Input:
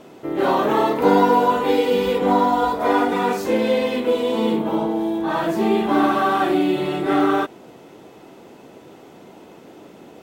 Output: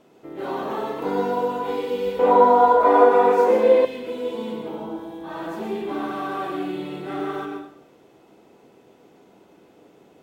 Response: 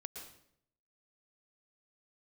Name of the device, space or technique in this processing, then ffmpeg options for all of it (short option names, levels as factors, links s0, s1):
bathroom: -filter_complex "[1:a]atrim=start_sample=2205[s0];[0:a][s0]afir=irnorm=-1:irlink=0,asettb=1/sr,asplit=3[s1][s2][s3];[s1]atrim=end=2.194[s4];[s2]atrim=start=2.19:end=3.85,asetpts=PTS-STARTPTS,afade=t=in:d=0.004:c=qsin,afade=t=out:st=1.656:d=0.004:c=qsin,equalizer=f=125:t=o:w=1:g=-10,equalizer=f=250:t=o:w=1:g=5,equalizer=f=500:t=o:w=1:g=11,equalizer=f=1000:t=o:w=1:g=11,equalizer=f=2000:t=o:w=1:g=4[s5];[s3]atrim=start=3.846[s6];[s4][s5]acrossfade=d=0.004:c1=hsin:c2=qsin[s7];[s7][s6]acrossfade=d=0.004:c1=qsin:c2=hsin,volume=0.473"